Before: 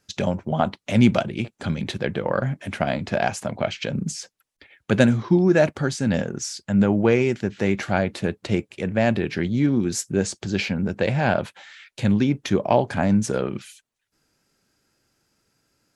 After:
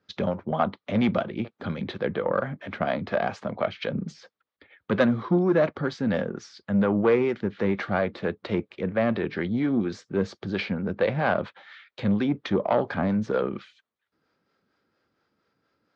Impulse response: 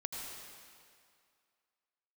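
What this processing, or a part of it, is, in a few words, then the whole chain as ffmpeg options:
guitar amplifier with harmonic tremolo: -filter_complex "[0:a]acrossover=split=430[link_01][link_02];[link_01]aeval=exprs='val(0)*(1-0.5/2+0.5/2*cos(2*PI*4.3*n/s))':channel_layout=same[link_03];[link_02]aeval=exprs='val(0)*(1-0.5/2-0.5/2*cos(2*PI*4.3*n/s))':channel_layout=same[link_04];[link_03][link_04]amix=inputs=2:normalize=0,asoftclip=type=tanh:threshold=-13.5dB,highpass=96,equalizer=frequency=130:width_type=q:width=4:gain=-7,equalizer=frequency=490:width_type=q:width=4:gain=4,equalizer=frequency=1200:width_type=q:width=4:gain=6,equalizer=frequency=2700:width_type=q:width=4:gain=-6,lowpass=frequency=3900:width=0.5412,lowpass=frequency=3900:width=1.3066"

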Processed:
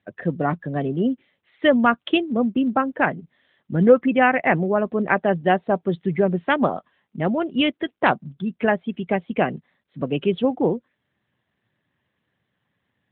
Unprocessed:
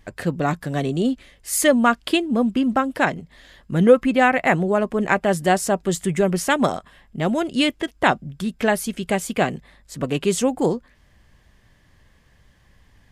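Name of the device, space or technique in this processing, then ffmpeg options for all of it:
mobile call with aggressive noise cancelling: -af "highpass=120,afftdn=noise_reduction=12:noise_floor=-30" -ar 8000 -c:a libopencore_amrnb -b:a 12200

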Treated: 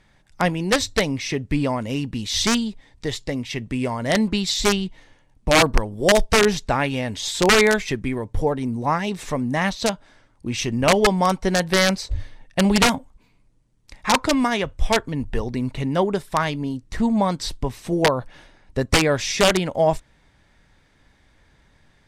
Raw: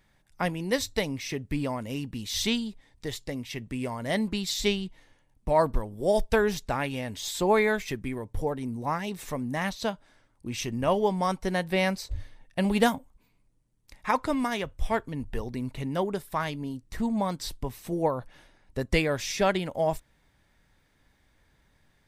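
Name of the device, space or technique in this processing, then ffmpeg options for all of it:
overflowing digital effects unit: -af "aeval=exprs='(mod(5.96*val(0)+1,2)-1)/5.96':channel_layout=same,lowpass=8100,volume=8dB"

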